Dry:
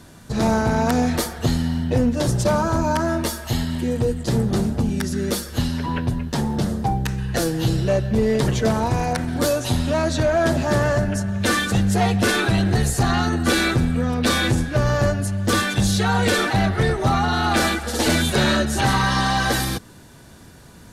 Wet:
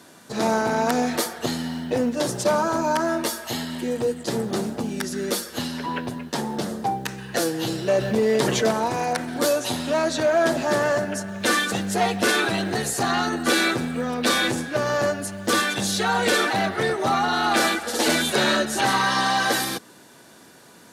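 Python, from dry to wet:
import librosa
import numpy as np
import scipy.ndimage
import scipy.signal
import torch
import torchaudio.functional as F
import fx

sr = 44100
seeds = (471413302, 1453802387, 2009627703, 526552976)

y = fx.quant_float(x, sr, bits=6)
y = scipy.signal.sosfilt(scipy.signal.butter(2, 280.0, 'highpass', fs=sr, output='sos'), y)
y = fx.env_flatten(y, sr, amount_pct=50, at=(7.88, 8.71))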